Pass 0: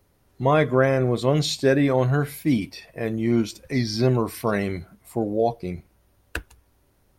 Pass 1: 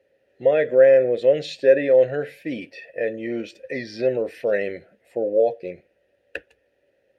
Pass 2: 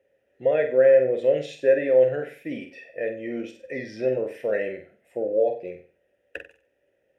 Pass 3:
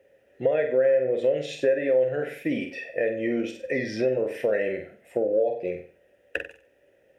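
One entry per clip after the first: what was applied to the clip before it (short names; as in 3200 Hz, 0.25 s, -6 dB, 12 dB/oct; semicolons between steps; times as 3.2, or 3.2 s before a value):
in parallel at +3 dB: limiter -15 dBFS, peak gain reduction 8 dB; on the sum: vowel filter e; gain +5 dB
bell 4300 Hz -13.5 dB 0.31 oct; on a send: flutter echo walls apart 8 m, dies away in 0.38 s; on the sum: gain -4 dB
compressor 3:1, threshold -31 dBFS, peak gain reduction 14 dB; gain +8 dB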